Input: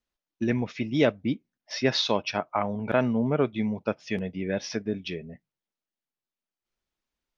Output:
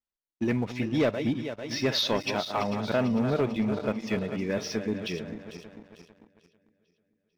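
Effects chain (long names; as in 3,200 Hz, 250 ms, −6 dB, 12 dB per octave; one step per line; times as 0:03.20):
feedback delay that plays each chunk backwards 223 ms, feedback 71%, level −11 dB
leveller curve on the samples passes 2
level −7.5 dB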